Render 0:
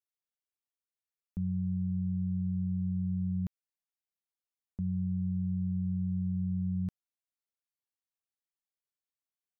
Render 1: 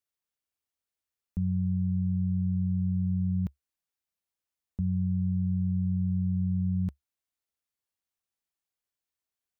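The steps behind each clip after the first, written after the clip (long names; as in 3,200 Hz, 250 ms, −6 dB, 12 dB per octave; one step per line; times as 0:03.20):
parametric band 70 Hz +8 dB 0.56 octaves
level +3 dB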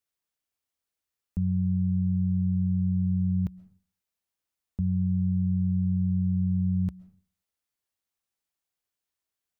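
convolution reverb RT60 0.45 s, pre-delay 90 ms, DRR 18.5 dB
level +2 dB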